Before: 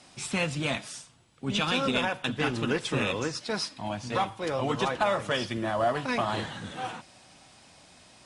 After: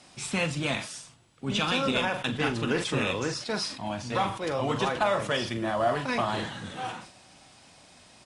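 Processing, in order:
double-tracking delay 42 ms −10.5 dB
level that may fall only so fast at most 97 dB per second

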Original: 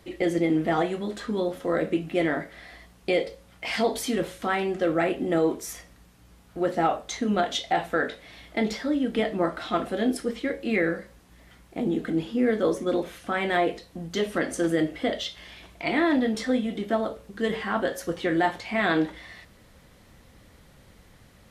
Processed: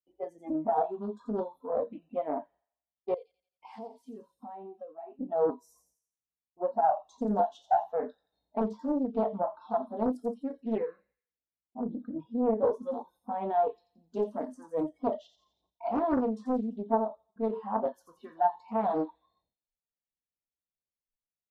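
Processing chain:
noise reduction from a noise print of the clip's start 29 dB
noise gate with hold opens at −56 dBFS
drawn EQ curve 110 Hz 0 dB, 930 Hz +7 dB, 1,400 Hz −21 dB
0:03.14–0:05.19: downward compressor 3 to 1, threshold −41 dBFS, peak gain reduction 19.5 dB
delay with a high-pass on its return 86 ms, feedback 46%, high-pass 4,800 Hz, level −5 dB
highs frequency-modulated by the lows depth 0.61 ms
level −6 dB

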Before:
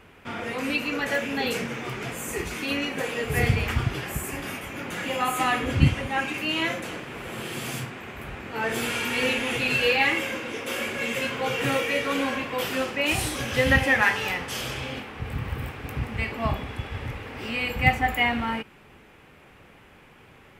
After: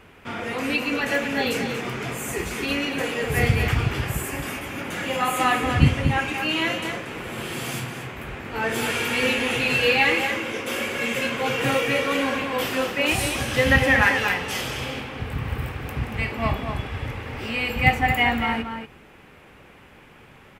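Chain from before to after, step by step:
slap from a distant wall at 40 metres, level −6 dB
level +2 dB

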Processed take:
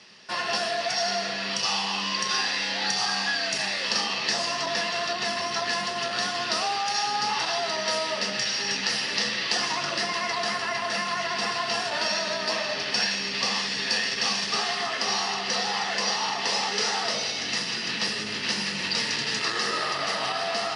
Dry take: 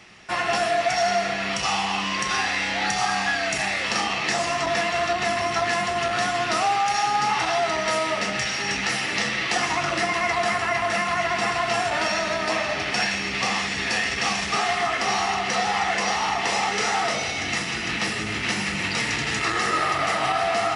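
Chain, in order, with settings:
loudspeaker in its box 220–9,200 Hz, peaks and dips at 320 Hz −9 dB, 740 Hz −9 dB, 1,300 Hz −7 dB, 2,200 Hz −9 dB, 4,700 Hz +8 dB, 7,400 Hz −8 dB

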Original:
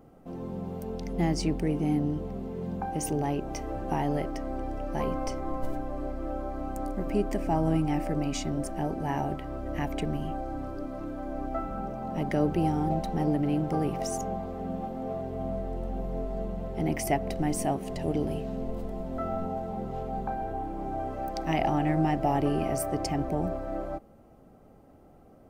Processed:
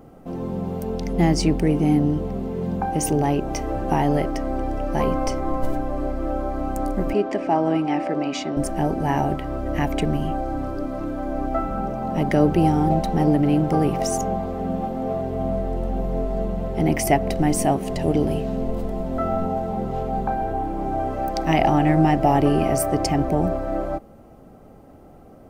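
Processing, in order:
0:07.13–0:08.57: band-pass filter 290–4,400 Hz
level +8.5 dB

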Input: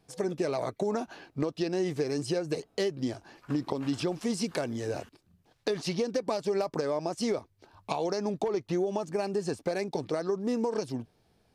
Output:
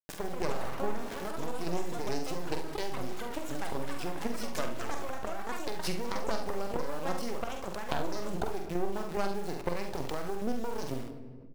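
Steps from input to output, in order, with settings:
adaptive Wiener filter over 9 samples
high-pass filter 280 Hz 6 dB per octave
half-wave rectification
square-wave tremolo 2.4 Hz, depth 65%, duty 25%
bit reduction 9 bits
delay with pitch and tempo change per echo 183 ms, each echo +5 semitones, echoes 3, each echo −6 dB
ambience of single reflections 46 ms −7 dB, 71 ms −12.5 dB
on a send at −14 dB: convolution reverb RT60 1.1 s, pre-delay 5 ms
on the sum: envelope flattener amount 50%

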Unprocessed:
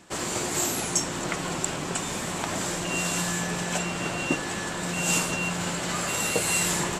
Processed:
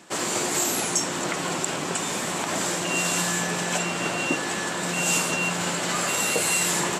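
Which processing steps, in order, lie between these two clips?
Bessel high-pass filter 200 Hz, order 2
in parallel at +2.5 dB: brickwall limiter −18.5 dBFS, peak gain reduction 8.5 dB
on the sum: level −3.5 dB

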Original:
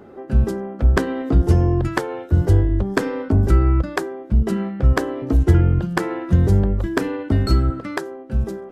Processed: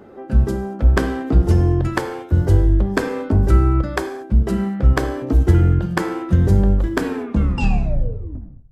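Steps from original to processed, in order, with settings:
turntable brake at the end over 1.75 s
reverb whose tail is shaped and stops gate 260 ms falling, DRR 7 dB

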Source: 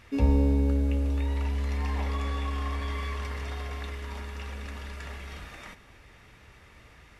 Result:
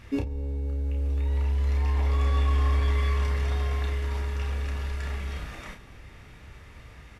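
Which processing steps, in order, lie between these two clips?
low-shelf EQ 240 Hz +7 dB
compressor whose output falls as the input rises −24 dBFS, ratio −1
on a send: ambience of single reflections 31 ms −5 dB, 51 ms −17 dB
on the sum: level −2 dB

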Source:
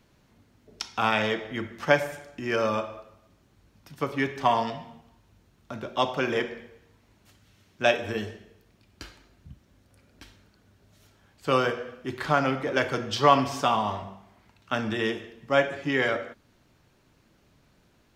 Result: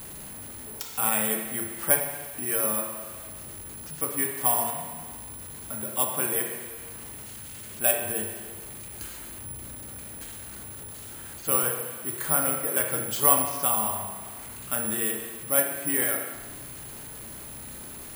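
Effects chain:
converter with a step at zero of −33 dBFS
bad sample-rate conversion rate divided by 4×, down filtered, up zero stuff
spring reverb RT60 1.3 s, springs 32 ms, chirp 45 ms, DRR 4.5 dB
level −8 dB

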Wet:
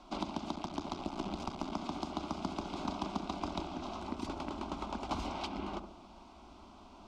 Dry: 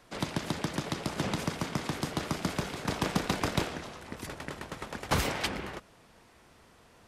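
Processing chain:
0:00.55–0:01.73: sub-harmonics by changed cycles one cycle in 3, muted
downward compressor 6 to 1, threshold −39 dBFS, peak gain reduction 15.5 dB
high-frequency loss of the air 150 metres
phaser with its sweep stopped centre 480 Hz, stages 6
feedback echo with a low-pass in the loop 70 ms, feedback 56%, low-pass 870 Hz, level −8 dB
level +8 dB

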